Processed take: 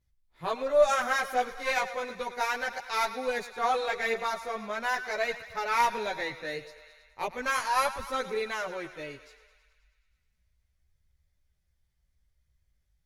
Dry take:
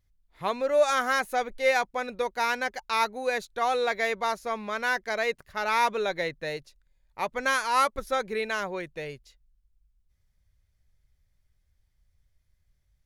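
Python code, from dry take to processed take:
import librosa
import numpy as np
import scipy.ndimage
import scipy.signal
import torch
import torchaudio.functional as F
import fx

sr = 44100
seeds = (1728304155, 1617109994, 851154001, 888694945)

y = fx.echo_thinned(x, sr, ms=106, feedback_pct=72, hz=490.0, wet_db=-13.0)
y = fx.cheby_harmonics(y, sr, harmonics=(2,), levels_db=(-11,), full_scale_db=-11.5)
y = fx.chorus_voices(y, sr, voices=2, hz=0.36, base_ms=15, depth_ms=3.4, mix_pct=55)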